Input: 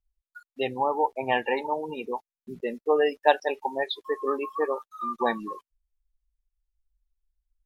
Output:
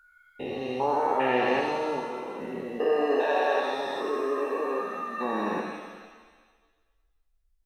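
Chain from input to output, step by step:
spectrum averaged block by block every 400 ms
reverb with rising layers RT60 1.4 s, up +7 semitones, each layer −8 dB, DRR 2.5 dB
level +3.5 dB

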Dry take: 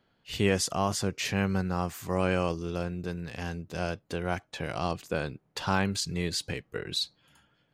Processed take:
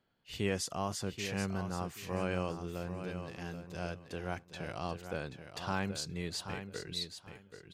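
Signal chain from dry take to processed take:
repeating echo 781 ms, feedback 21%, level −9 dB
level −8 dB

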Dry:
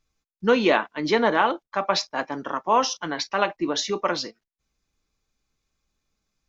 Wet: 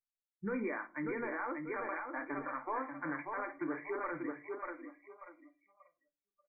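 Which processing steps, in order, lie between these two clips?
low-shelf EQ 120 Hz −11 dB
mains-hum notches 60/120/180/240 Hz
in parallel at −7 dB: hard clipping −21 dBFS, distortion −7 dB
on the sum: downward compressor, threshold −18 dBFS, peak gain reduction 6 dB
flanger 1.3 Hz, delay 6.2 ms, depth 2.8 ms, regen −77%
linear-phase brick-wall low-pass 2,400 Hz
parametric band 700 Hz −10.5 dB 1.1 octaves
repeating echo 588 ms, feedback 33%, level −6.5 dB
brickwall limiter −26 dBFS, peak gain reduction 9 dB
noise reduction from a noise print of the clip's start 28 dB
on a send at −11 dB: convolution reverb RT60 0.35 s, pre-delay 4 ms
on the sum: level −3 dB

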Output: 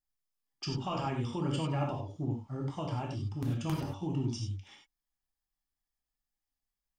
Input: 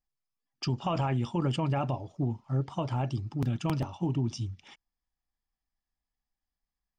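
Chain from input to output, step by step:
high-shelf EQ 5,700 Hz +6.5 dB
reverb whose tail is shaped and stops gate 120 ms flat, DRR −0.5 dB
level −7 dB

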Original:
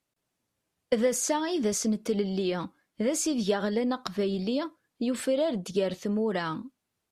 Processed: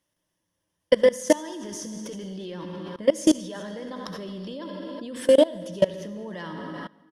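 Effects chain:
EQ curve with evenly spaced ripples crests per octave 1.2, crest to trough 9 dB
single-tap delay 379 ms −19 dB
convolution reverb RT60 1.4 s, pre-delay 58 ms, DRR 6 dB
output level in coarse steps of 22 dB
level +8.5 dB

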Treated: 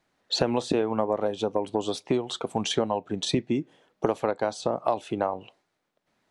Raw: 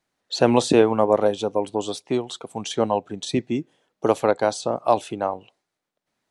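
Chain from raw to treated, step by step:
high-shelf EQ 5,700 Hz −9.5 dB
downward compressor 6 to 1, threshold −28 dBFS, peak gain reduction 17 dB
on a send: convolution reverb, pre-delay 3 ms, DRR 19.5 dB
on the sum: level +6 dB

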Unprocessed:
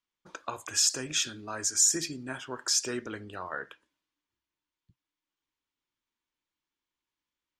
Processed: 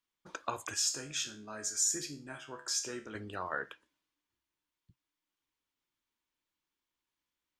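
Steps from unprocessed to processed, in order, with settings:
0:00.74–0:03.15: tuned comb filter 71 Hz, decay 0.35 s, harmonics all, mix 80%

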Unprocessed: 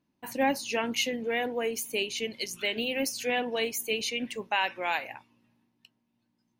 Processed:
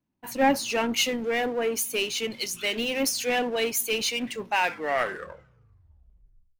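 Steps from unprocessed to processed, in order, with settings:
turntable brake at the end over 2.06 s
power curve on the samples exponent 0.7
multiband upward and downward expander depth 70%

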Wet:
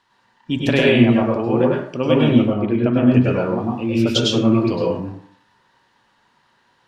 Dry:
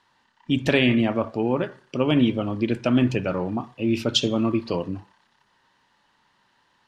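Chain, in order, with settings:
0:02.42–0:03.14: high-frequency loss of the air 400 metres
dense smooth reverb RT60 0.55 s, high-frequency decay 0.55×, pre-delay 90 ms, DRR −3 dB

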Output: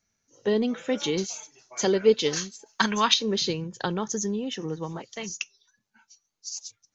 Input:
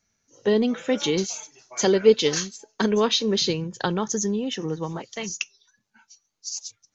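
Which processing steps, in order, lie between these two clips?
0:02.66–0:03.14: drawn EQ curve 190 Hz 0 dB, 460 Hz −10 dB, 970 Hz +9 dB
level −3.5 dB

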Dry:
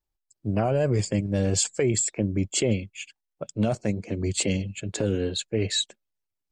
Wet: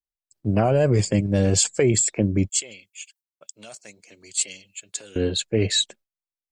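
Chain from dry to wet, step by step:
noise gate with hold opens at −47 dBFS
0:02.49–0:05.16: first difference
level +4.5 dB

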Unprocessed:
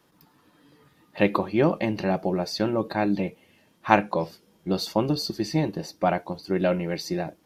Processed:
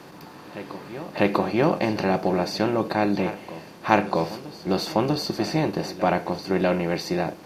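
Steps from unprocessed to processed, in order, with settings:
compressor on every frequency bin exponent 0.6
backwards echo 646 ms −15.5 dB
level −2 dB

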